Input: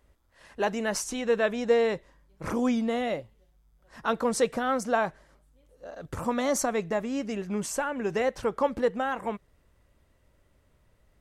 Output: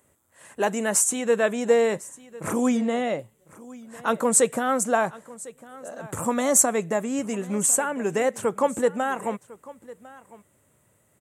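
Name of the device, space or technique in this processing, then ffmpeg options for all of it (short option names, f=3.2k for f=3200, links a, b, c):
budget condenser microphone: -filter_complex "[0:a]highpass=f=100:w=0.5412,highpass=f=100:w=1.3066,highshelf=f=6.3k:t=q:w=3:g=8,asettb=1/sr,asplit=3[a][b][c];[a]atrim=end=2.774[d];[b]atrim=start=2.77:end=3.19,asetpts=PTS-STARTPTS,afade=t=in:d=0.004:c=qsin,afade=t=out:st=0.416:d=0.004:c=qsin,lowpass=6k[e];[c]atrim=start=3.186[f];[d][e]acrossfade=d=0.004:c1=hsin:c2=qsin[g];[g][f]acrossfade=d=0.004:c1=qsin:c2=hsin,aecho=1:1:1052:0.1,volume=3.5dB"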